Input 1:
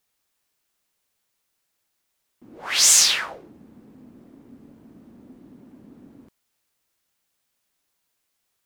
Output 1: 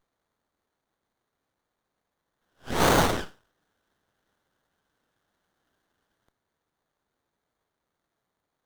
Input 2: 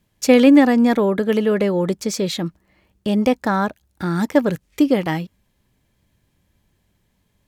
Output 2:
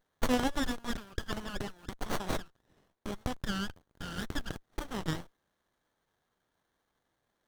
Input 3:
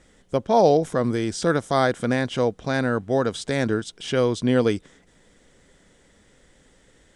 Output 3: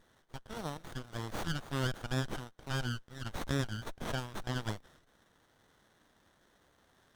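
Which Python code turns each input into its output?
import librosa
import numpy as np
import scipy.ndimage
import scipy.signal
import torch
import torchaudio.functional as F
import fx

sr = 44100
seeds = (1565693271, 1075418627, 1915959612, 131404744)

y = scipy.signal.sosfilt(scipy.signal.cheby1(5, 1.0, 1500.0, 'highpass', fs=sr, output='sos'), x)
y = fx.running_max(y, sr, window=17)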